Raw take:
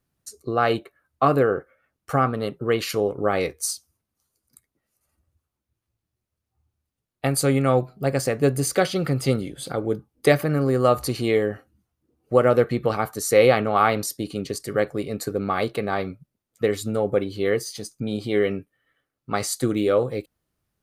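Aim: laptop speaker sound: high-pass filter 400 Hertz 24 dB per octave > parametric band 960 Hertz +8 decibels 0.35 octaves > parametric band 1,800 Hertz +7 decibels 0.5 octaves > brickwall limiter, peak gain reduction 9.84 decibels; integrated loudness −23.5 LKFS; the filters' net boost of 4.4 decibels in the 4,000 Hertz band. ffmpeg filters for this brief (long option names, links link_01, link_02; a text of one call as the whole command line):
ffmpeg -i in.wav -af "highpass=frequency=400:width=0.5412,highpass=frequency=400:width=1.3066,equalizer=frequency=960:width_type=o:width=0.35:gain=8,equalizer=frequency=1800:width_type=o:width=0.5:gain=7,equalizer=frequency=4000:width_type=o:gain=5,volume=2dB,alimiter=limit=-9.5dB:level=0:latency=1" out.wav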